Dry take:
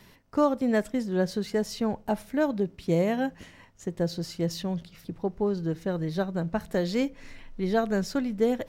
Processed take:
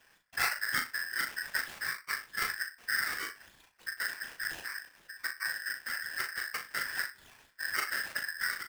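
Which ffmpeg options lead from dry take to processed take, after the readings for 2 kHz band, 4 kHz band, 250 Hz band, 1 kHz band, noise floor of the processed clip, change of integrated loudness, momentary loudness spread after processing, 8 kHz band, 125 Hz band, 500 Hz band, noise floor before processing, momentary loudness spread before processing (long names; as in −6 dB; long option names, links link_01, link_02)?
+8.5 dB, +2.5 dB, −31.5 dB, −6.0 dB, −65 dBFS, −5.5 dB, 8 LU, +4.5 dB, below −25 dB, −28.0 dB, −55 dBFS, 8 LU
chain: -filter_complex "[0:a]highpass=120,afreqshift=-260,afftfilt=real='hypot(re,im)*cos(2*PI*random(0))':imag='hypot(re,im)*sin(2*PI*random(1))':win_size=512:overlap=0.75,acrusher=samples=14:mix=1:aa=0.000001:lfo=1:lforange=8.4:lforate=3.3,asplit=2[link_01][link_02];[link_02]adelay=38,volume=-6.5dB[link_03];[link_01][link_03]amix=inputs=2:normalize=0,asplit=2[link_04][link_05];[link_05]adelay=62,lowpass=frequency=1100:poles=1,volume=-12.5dB,asplit=2[link_06][link_07];[link_07]adelay=62,lowpass=frequency=1100:poles=1,volume=0.17[link_08];[link_06][link_08]amix=inputs=2:normalize=0[link_09];[link_04][link_09]amix=inputs=2:normalize=0,aeval=exprs='val(0)*sgn(sin(2*PI*1700*n/s))':channel_layout=same,volume=-3dB"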